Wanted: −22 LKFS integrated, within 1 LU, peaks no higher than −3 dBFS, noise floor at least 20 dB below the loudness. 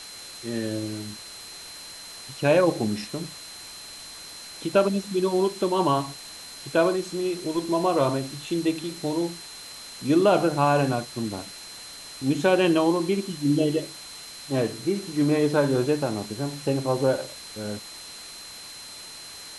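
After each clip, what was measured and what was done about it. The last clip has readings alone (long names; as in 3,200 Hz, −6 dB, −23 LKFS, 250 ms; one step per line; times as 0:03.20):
interfering tone 4,100 Hz; level of the tone −42 dBFS; background noise floor −42 dBFS; target noise floor −45 dBFS; integrated loudness −25.0 LKFS; sample peak −7.0 dBFS; target loudness −22.0 LKFS
→ notch filter 4,100 Hz, Q 30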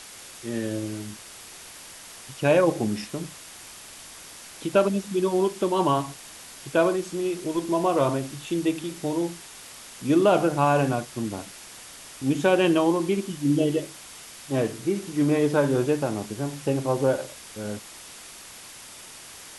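interfering tone none found; background noise floor −44 dBFS; target noise floor −45 dBFS
→ broadband denoise 6 dB, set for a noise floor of −44 dBFS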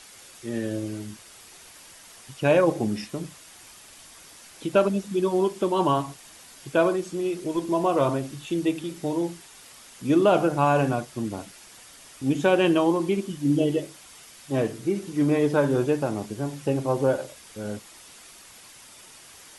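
background noise floor −49 dBFS; integrated loudness −25.0 LKFS; sample peak −7.5 dBFS; target loudness −22.0 LKFS
→ level +3 dB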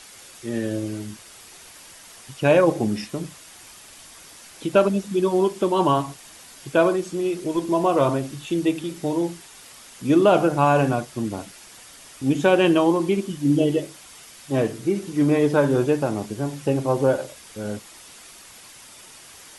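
integrated loudness −22.0 LKFS; sample peak −4.5 dBFS; background noise floor −46 dBFS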